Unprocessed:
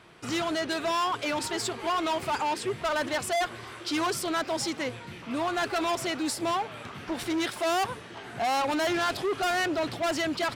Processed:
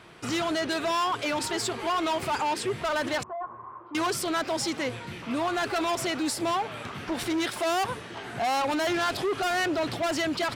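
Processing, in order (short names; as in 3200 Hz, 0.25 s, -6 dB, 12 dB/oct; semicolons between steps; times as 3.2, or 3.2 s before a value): limiter -26 dBFS, peak gain reduction 5 dB; 3.23–3.95 ladder low-pass 1100 Hz, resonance 80%; gain +3.5 dB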